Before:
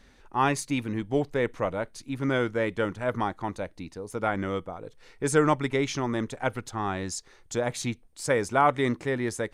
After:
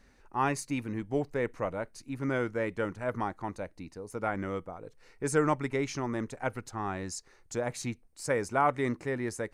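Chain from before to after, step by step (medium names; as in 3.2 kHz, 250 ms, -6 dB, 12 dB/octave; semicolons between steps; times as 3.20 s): peaking EQ 3.4 kHz -9.5 dB 0.32 oct; trim -4.5 dB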